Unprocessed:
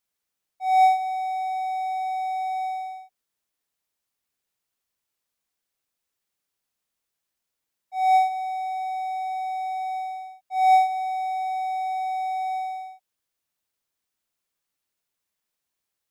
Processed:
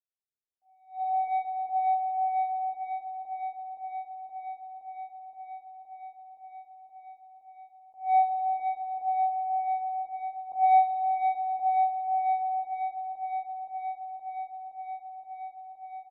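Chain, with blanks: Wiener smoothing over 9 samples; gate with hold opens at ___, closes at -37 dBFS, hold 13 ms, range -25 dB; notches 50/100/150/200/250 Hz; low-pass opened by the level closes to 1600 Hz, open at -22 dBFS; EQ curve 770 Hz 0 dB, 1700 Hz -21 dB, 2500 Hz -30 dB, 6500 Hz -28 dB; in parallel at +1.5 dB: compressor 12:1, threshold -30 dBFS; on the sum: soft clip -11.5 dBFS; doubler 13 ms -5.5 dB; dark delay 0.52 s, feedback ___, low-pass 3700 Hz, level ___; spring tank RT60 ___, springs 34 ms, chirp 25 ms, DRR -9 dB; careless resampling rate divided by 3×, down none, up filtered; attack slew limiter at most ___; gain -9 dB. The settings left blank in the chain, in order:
-33 dBFS, 81%, -4 dB, 2.8 s, 190 dB/s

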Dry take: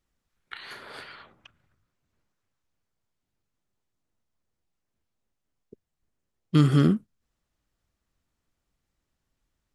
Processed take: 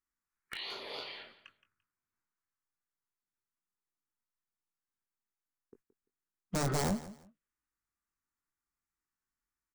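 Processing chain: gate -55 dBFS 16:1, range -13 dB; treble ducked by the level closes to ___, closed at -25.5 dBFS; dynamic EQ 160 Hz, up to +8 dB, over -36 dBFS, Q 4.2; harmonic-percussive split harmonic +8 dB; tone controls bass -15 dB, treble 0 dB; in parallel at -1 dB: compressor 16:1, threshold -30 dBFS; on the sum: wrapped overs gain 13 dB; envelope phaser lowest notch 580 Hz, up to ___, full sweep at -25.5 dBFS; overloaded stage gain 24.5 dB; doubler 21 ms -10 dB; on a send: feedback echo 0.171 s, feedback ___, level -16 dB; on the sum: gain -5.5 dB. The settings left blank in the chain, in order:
2900 Hz, 2900 Hz, 23%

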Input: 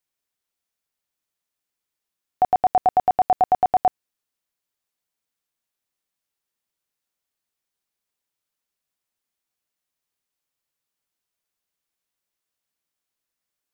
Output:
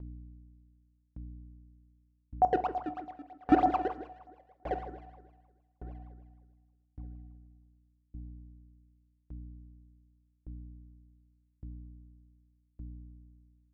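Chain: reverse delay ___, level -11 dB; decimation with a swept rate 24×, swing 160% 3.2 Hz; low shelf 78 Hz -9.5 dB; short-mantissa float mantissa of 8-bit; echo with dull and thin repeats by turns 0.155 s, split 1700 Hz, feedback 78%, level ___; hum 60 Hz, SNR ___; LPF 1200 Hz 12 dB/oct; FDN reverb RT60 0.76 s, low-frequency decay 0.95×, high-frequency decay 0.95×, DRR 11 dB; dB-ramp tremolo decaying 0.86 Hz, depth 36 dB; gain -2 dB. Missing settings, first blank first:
0.679 s, -6.5 dB, 12 dB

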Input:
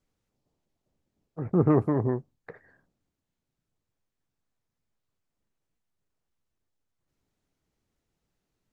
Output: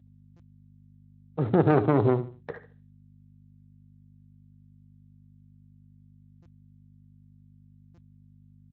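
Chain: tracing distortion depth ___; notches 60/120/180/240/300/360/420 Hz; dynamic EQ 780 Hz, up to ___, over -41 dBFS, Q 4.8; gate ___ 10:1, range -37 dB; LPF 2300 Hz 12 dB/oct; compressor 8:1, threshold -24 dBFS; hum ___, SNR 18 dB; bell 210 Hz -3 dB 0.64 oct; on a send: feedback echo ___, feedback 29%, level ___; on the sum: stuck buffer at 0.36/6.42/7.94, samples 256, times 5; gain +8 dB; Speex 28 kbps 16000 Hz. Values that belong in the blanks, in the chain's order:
0.34 ms, +3 dB, -53 dBFS, 50 Hz, 73 ms, -14 dB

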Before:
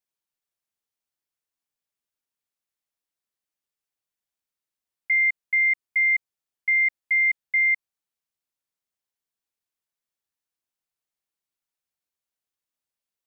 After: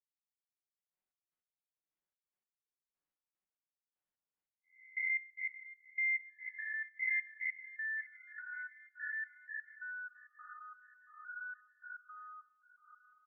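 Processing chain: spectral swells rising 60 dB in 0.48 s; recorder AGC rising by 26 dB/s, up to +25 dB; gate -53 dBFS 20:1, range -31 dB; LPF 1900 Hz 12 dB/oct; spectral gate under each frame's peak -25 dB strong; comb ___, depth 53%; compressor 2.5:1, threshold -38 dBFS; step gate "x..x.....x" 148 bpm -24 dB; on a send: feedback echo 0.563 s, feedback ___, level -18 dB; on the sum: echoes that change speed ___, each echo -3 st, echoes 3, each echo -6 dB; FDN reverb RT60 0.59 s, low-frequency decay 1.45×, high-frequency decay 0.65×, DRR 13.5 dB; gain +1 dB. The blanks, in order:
5.4 ms, 52%, 0.678 s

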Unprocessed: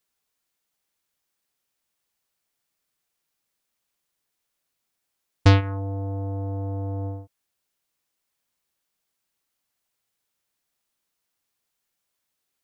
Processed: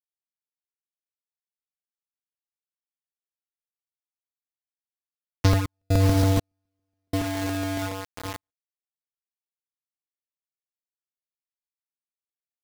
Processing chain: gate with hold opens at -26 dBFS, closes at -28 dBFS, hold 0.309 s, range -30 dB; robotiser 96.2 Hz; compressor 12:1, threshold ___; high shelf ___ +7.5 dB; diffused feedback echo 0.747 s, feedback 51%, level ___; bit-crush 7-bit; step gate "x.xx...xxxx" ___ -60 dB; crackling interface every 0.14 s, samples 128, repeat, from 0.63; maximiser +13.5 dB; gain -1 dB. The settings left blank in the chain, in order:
-26 dBFS, 3300 Hz, -8.5 dB, 61 bpm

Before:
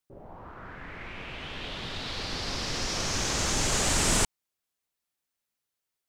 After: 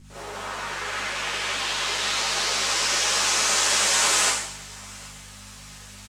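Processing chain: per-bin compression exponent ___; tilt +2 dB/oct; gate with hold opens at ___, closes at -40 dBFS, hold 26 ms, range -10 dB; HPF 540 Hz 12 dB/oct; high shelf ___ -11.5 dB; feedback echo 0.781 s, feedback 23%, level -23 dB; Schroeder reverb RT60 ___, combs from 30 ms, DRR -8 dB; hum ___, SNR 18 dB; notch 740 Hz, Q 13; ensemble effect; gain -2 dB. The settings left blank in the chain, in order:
0.4, -31 dBFS, 6400 Hz, 0.73 s, 50 Hz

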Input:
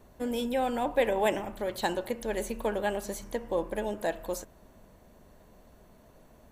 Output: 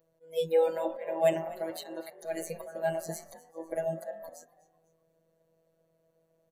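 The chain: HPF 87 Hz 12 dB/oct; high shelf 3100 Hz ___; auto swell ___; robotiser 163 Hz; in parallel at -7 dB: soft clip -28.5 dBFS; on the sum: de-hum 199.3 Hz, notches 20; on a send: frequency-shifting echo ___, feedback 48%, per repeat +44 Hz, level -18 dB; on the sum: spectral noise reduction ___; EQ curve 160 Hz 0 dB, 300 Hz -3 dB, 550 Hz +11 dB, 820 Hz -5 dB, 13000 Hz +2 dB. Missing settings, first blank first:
-3 dB, 0.232 s, 0.249 s, 17 dB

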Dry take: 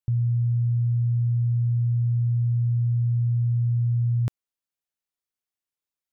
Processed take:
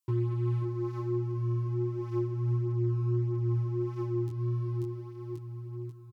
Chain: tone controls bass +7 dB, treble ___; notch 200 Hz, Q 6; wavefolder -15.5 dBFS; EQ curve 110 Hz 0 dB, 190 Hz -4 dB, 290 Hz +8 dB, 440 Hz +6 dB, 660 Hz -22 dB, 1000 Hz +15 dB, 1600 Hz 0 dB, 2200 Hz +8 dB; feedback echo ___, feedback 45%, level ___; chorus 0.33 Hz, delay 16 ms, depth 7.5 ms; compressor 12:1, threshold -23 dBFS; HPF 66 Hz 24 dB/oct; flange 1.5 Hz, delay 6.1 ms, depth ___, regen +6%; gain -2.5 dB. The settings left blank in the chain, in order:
+9 dB, 0.538 s, -6.5 dB, 4.2 ms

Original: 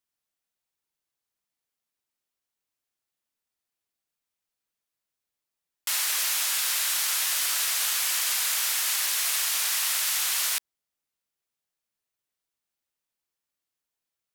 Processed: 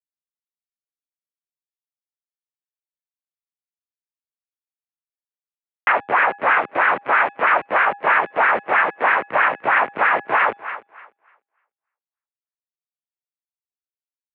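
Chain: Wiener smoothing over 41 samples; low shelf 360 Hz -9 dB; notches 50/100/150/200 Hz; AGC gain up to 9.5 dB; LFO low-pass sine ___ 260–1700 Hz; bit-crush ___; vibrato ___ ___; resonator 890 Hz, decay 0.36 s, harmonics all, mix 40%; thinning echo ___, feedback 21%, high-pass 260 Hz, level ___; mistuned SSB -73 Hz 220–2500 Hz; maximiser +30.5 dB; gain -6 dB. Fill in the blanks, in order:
3.1 Hz, 7-bit, 0.57 Hz, 15 cents, 0.298 s, -19 dB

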